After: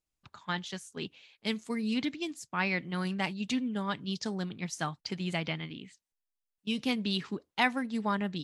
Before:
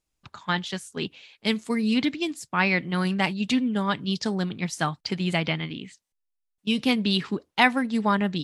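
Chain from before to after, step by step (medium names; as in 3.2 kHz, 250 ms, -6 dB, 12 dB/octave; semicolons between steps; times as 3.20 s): dynamic bell 6.3 kHz, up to +5 dB, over -51 dBFS, Q 3.1; trim -8 dB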